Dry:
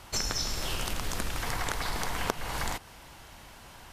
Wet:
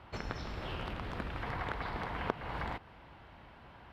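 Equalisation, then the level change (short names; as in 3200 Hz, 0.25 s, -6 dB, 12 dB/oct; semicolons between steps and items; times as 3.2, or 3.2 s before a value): HPF 49 Hz; air absorption 420 m; -2.0 dB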